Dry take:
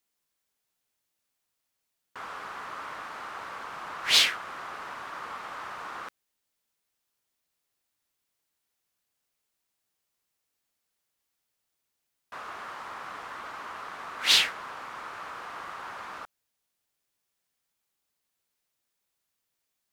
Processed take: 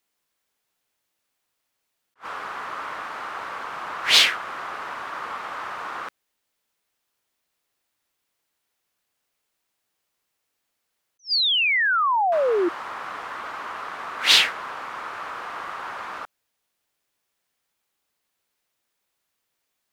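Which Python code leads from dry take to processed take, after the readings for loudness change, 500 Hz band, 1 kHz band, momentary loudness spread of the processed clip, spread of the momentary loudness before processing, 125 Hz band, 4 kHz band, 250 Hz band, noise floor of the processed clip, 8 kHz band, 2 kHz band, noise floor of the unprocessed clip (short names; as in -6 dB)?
+7.0 dB, +17.5 dB, +10.0 dB, 17 LU, 20 LU, n/a, +6.0 dB, +15.0 dB, -78 dBFS, +3.0 dB, +9.0 dB, -82 dBFS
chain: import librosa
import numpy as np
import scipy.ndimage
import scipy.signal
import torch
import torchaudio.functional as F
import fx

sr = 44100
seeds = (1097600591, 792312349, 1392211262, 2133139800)

y = fx.bass_treble(x, sr, bass_db=-4, treble_db=-4)
y = fx.spec_paint(y, sr, seeds[0], shape='fall', start_s=11.19, length_s=1.5, low_hz=330.0, high_hz=6200.0, level_db=-27.0)
y = fx.attack_slew(y, sr, db_per_s=390.0)
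y = y * librosa.db_to_amplitude(6.5)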